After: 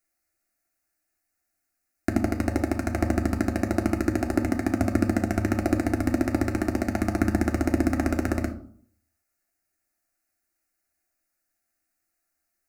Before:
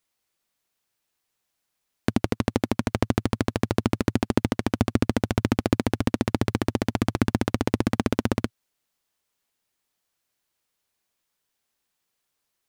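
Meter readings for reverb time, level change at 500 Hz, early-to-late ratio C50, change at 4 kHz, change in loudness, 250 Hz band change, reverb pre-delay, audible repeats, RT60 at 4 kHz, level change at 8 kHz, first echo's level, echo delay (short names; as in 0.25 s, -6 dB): 0.60 s, -1.0 dB, 11.5 dB, -9.5 dB, 0.0 dB, +0.5 dB, 3 ms, none, 0.35 s, -1.0 dB, none, none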